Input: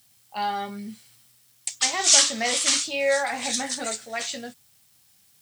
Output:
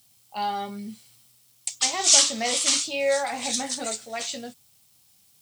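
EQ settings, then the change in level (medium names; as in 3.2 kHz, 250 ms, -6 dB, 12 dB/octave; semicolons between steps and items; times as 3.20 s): peaking EQ 1.7 kHz -7 dB 0.62 oct; 0.0 dB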